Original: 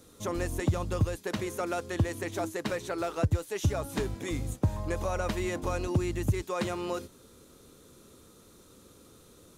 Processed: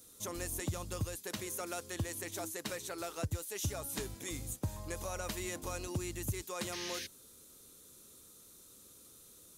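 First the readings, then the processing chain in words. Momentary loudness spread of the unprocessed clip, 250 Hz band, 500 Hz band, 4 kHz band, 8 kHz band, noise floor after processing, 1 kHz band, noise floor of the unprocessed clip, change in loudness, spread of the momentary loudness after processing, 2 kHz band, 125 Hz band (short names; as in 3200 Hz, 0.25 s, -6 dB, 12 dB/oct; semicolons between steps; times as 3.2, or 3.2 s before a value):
4 LU, -10.5 dB, -10.0 dB, -1.0 dB, +3.0 dB, -58 dBFS, -9.0 dB, -57 dBFS, -7.5 dB, 17 LU, -6.0 dB, -10.5 dB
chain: pre-emphasis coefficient 0.8; painted sound noise, 6.72–7.07, 1500–6600 Hz -47 dBFS; gain +3.5 dB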